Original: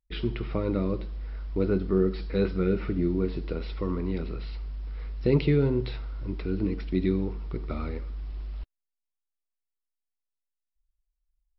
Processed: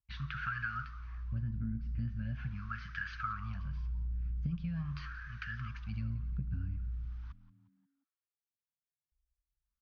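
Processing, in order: Chebyshev band-stop 110–1100 Hz, order 3; resonant low shelf 430 Hz +14 dB, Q 1.5; varispeed +18%; wah 0.42 Hz 290–1600 Hz, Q 4.7; compressor 12:1, threshold -47 dBFS, peak gain reduction 11.5 dB; frequency-shifting echo 0.177 s, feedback 43%, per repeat -84 Hz, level -17.5 dB; gain +14.5 dB

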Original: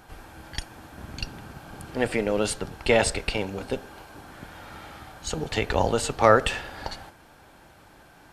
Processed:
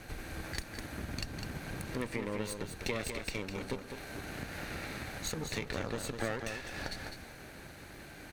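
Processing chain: minimum comb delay 0.47 ms; compressor 4:1, threshold -41 dBFS, peak gain reduction 24 dB; on a send: echo 0.204 s -7 dB; on the sum: gain +4 dB

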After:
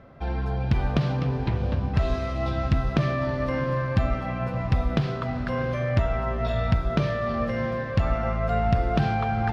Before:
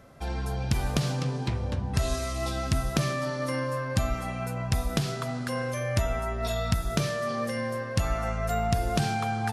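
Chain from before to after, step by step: air absorption 310 m; diffused feedback echo 0.67 s, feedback 46%, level -11 dB; gain +4 dB

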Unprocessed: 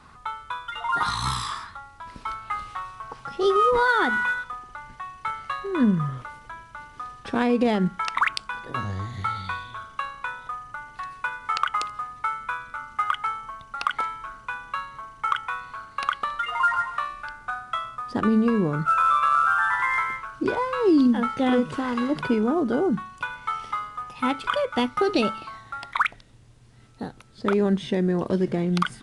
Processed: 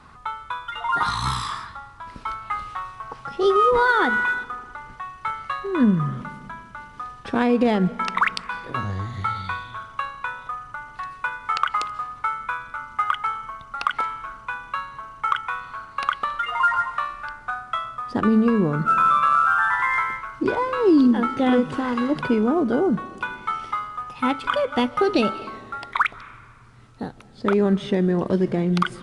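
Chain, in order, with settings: high shelf 4400 Hz -5 dB; reverb RT60 2.0 s, pre-delay 0.11 s, DRR 19 dB; gain +2.5 dB

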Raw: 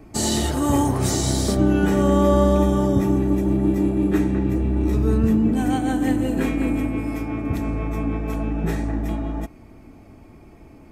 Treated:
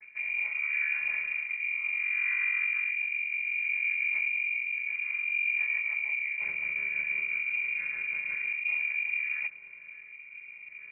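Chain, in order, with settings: chord vocoder minor triad, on D3; reverse; compressor 6:1, threshold -31 dBFS, peak gain reduction 17.5 dB; reverse; rotary speaker horn 0.7 Hz; inverted band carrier 2600 Hz; gain +3.5 dB

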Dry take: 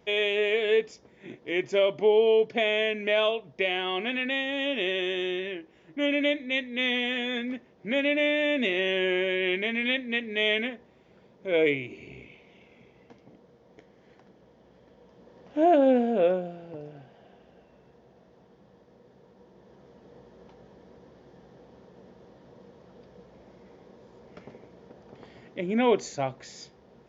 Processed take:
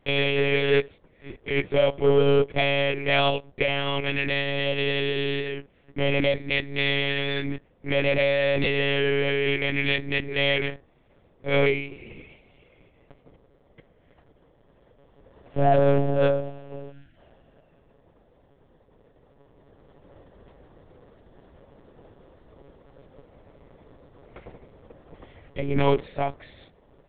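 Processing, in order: sample leveller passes 1; monotone LPC vocoder at 8 kHz 140 Hz; spectral gain 16.92–17.16, 360–1300 Hz -15 dB

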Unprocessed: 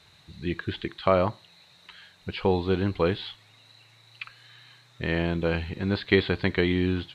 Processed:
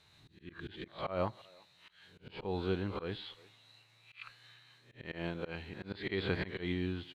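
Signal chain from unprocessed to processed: spectral swells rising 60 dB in 0.41 s; 5.05–5.91 low shelf 150 Hz -7 dB; auto swell 0.154 s; speakerphone echo 0.35 s, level -23 dB; noise-modulated level, depth 60%; gain -6.5 dB

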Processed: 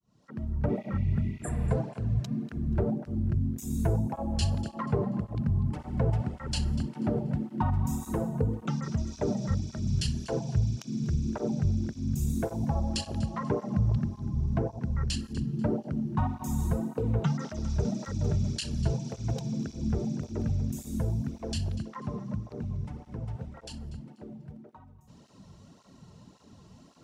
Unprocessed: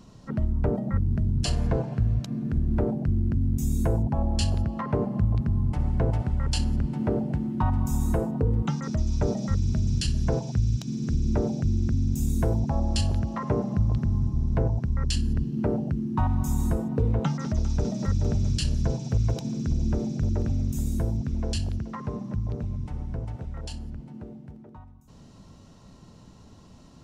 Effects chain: opening faded in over 0.67 s; spectral repair 0.71–1.68, 1900–7200 Hz before; thinning echo 0.243 s, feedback 26%, level -16 dB; tape flanging out of phase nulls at 1.8 Hz, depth 4.2 ms

